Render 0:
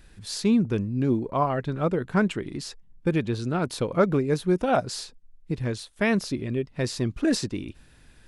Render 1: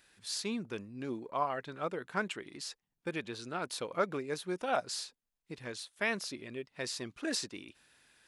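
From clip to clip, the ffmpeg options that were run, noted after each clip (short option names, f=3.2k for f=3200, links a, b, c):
-af "highpass=f=1k:p=1,volume=-4dB"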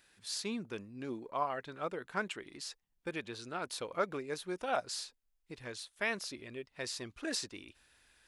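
-af "asubboost=boost=5.5:cutoff=65,volume=-1.5dB"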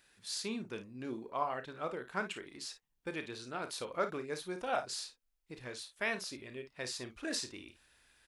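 -af "aecho=1:1:32|54:0.282|0.251,volume=-1dB"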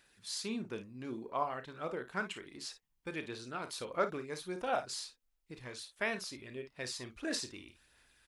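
-af "aphaser=in_gain=1:out_gain=1:delay=1:decay=0.28:speed=1.5:type=sinusoidal,volume=-1dB"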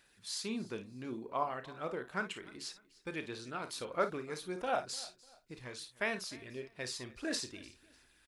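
-af "aecho=1:1:298|596:0.0841|0.0278"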